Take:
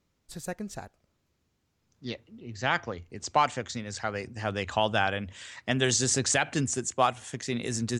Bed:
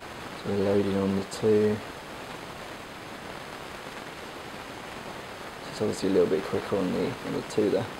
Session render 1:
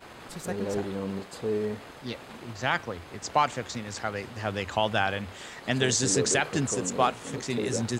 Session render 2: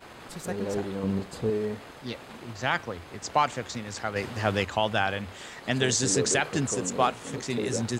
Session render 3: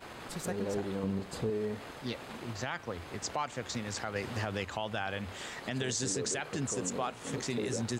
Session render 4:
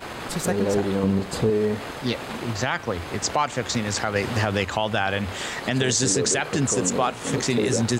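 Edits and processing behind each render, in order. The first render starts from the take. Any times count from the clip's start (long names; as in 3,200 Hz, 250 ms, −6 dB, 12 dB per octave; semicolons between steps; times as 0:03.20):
mix in bed −6.5 dB
0:01.03–0:01.50: low-shelf EQ 220 Hz +11 dB; 0:04.16–0:04.65: clip gain +5 dB
downward compressor 2.5 to 1, threshold −32 dBFS, peak gain reduction 10 dB; brickwall limiter −22.5 dBFS, peak gain reduction 6 dB
level +12 dB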